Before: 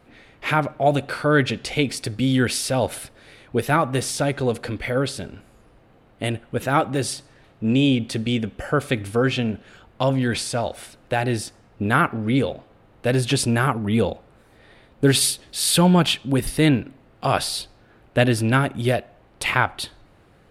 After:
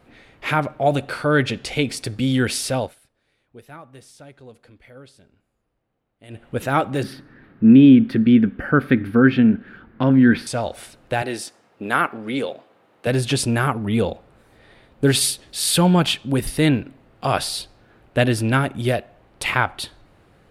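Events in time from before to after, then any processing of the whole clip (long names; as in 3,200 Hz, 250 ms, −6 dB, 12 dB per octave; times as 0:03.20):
0:02.75–0:06.47: duck −21.5 dB, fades 0.19 s
0:07.03–0:10.47: drawn EQ curve 110 Hz 0 dB, 240 Hz +12 dB, 630 Hz −5 dB, 1,100 Hz 0 dB, 1,600 Hz +8 dB, 2,700 Hz −5 dB, 4,800 Hz −10 dB, 7,600 Hz −27 dB, 13,000 Hz −5 dB
0:11.22–0:13.07: Bessel high-pass filter 340 Hz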